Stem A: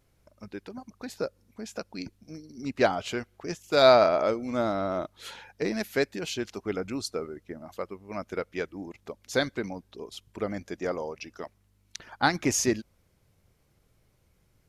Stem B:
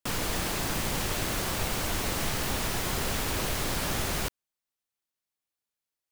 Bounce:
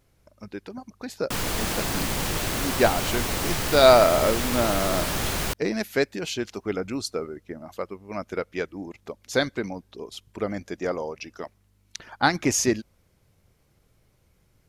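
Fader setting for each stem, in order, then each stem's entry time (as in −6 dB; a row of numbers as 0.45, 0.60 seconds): +3.0, +3.0 decibels; 0.00, 1.25 seconds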